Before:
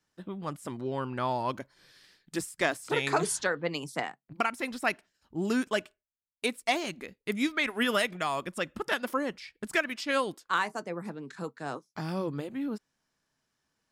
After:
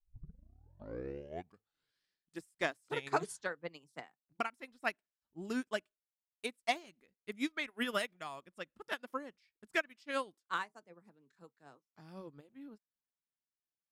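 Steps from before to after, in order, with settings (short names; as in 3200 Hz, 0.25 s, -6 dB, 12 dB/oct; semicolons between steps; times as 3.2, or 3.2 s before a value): tape start at the beginning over 2.04 s; upward expander 2.5:1, over -38 dBFS; gain -3.5 dB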